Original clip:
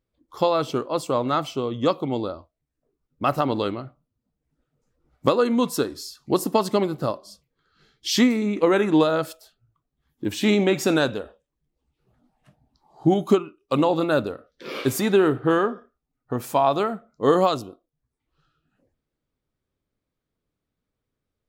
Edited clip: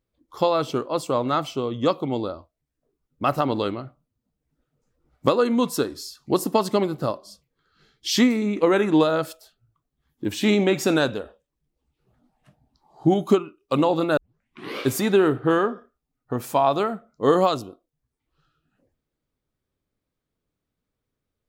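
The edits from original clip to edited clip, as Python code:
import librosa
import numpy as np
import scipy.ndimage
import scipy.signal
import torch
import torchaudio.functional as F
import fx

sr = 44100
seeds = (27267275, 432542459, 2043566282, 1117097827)

y = fx.edit(x, sr, fx.tape_start(start_s=14.17, length_s=0.61), tone=tone)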